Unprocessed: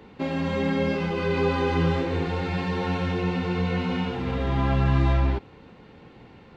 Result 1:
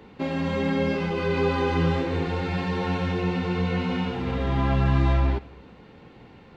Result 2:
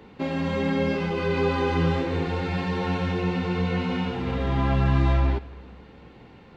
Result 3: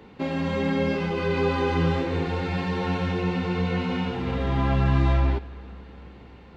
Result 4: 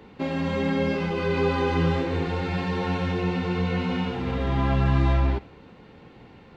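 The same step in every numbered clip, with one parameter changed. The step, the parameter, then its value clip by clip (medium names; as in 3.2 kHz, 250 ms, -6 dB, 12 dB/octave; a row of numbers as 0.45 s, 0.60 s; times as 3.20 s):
algorithmic reverb, RT60: 0.9 s, 2 s, 4.4 s, 0.42 s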